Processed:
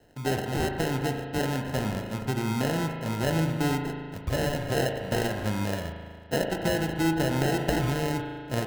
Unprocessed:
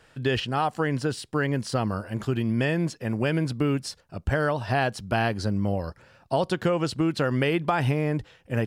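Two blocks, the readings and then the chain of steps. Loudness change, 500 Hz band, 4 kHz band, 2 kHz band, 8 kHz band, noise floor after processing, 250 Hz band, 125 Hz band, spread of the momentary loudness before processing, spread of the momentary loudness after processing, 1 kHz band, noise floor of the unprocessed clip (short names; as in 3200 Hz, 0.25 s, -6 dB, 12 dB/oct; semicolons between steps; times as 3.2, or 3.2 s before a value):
-2.0 dB, -2.0 dB, -0.5 dB, -2.5 dB, +4.0 dB, -41 dBFS, -1.5 dB, -2.0 dB, 5 LU, 6 LU, -3.0 dB, -59 dBFS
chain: sample-and-hold 38×; spring tank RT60 1.9 s, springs 37 ms, chirp 60 ms, DRR 4 dB; ending taper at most 140 dB/s; gain -3 dB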